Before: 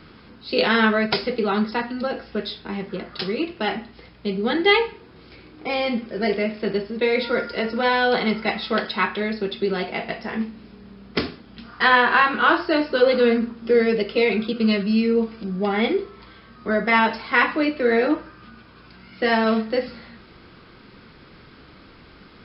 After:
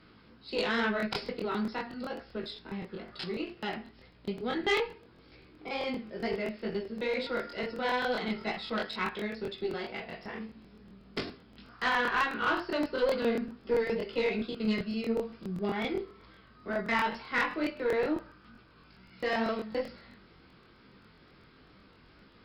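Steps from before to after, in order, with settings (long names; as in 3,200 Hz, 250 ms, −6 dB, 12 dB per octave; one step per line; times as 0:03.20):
chorus effect 2.2 Hz, delay 15 ms, depth 5 ms
tube saturation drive 12 dB, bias 0.4
regular buffer underruns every 0.13 s, samples 1,024, repeat, from 0:00.98
level −6.5 dB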